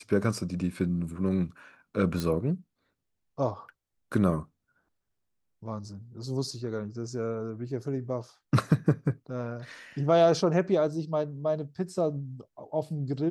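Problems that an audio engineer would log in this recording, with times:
2.20 s: pop

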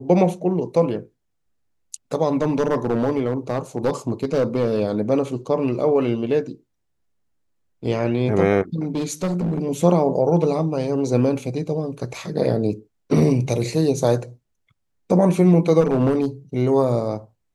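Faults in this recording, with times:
2.32–4.80 s: clipped -14 dBFS
8.95–9.63 s: clipped -18.5 dBFS
15.80–16.25 s: clipped -13.5 dBFS

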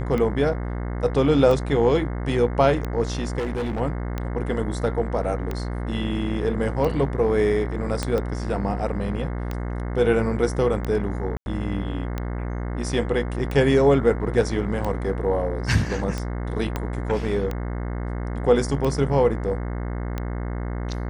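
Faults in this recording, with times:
buzz 60 Hz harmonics 36 -28 dBFS
tick 45 rpm -15 dBFS
3.38–3.81 s: clipped -23 dBFS
8.03 s: pop -10 dBFS
11.37–11.46 s: dropout 91 ms
16.76 s: pop -12 dBFS

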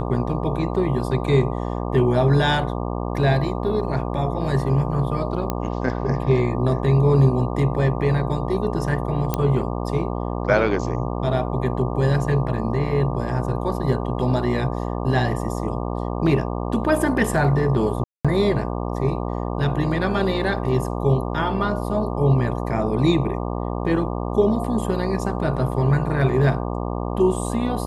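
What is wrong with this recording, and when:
buzz 60 Hz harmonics 20 -26 dBFS
5.50 s: pop -9 dBFS
9.34 s: pop -7 dBFS
18.04–18.25 s: dropout 206 ms

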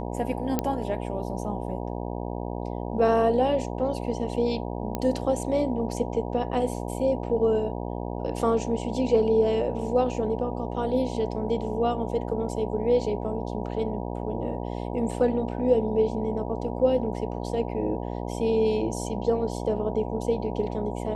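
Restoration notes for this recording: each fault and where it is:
buzz 60 Hz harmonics 16 -32 dBFS
0.59 s: pop -10 dBFS
4.95 s: pop -14 dBFS

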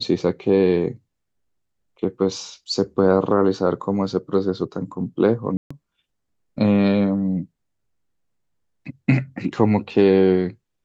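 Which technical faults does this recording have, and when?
5.57–5.71 s: dropout 135 ms

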